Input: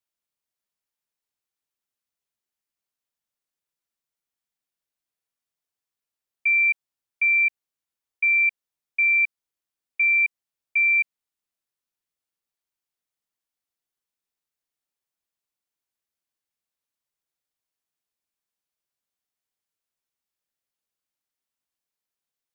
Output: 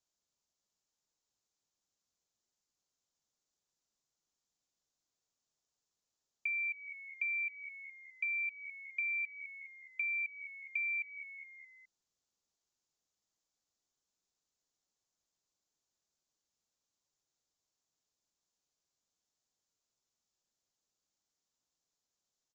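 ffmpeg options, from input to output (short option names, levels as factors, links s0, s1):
-filter_complex "[0:a]crystalizer=i=1.5:c=0,asplit=2[s0][s1];[s1]asplit=4[s2][s3][s4][s5];[s2]adelay=208,afreqshift=-75,volume=0.106[s6];[s3]adelay=416,afreqshift=-150,volume=0.0562[s7];[s4]adelay=624,afreqshift=-225,volume=0.0299[s8];[s5]adelay=832,afreqshift=-300,volume=0.0158[s9];[s6][s7][s8][s9]amix=inputs=4:normalize=0[s10];[s0][s10]amix=inputs=2:normalize=0,aresample=16000,aresample=44100,equalizer=f=2200:t=o:w=1.5:g=-10.5,acompressor=threshold=0.0112:ratio=5,volume=1.41"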